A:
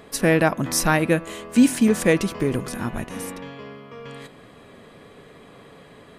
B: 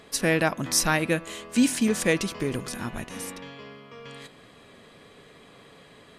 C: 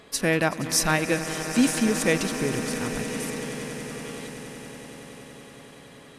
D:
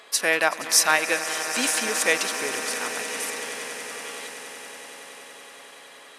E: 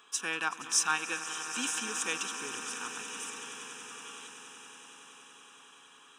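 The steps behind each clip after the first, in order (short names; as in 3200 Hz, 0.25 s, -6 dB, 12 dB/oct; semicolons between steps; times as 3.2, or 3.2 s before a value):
bell 5000 Hz +7.5 dB 2.6 oct; gain -6 dB
swelling echo 94 ms, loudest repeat 8, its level -17 dB
HPF 690 Hz 12 dB/oct; gain +5 dB
fixed phaser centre 3000 Hz, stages 8; gain -6.5 dB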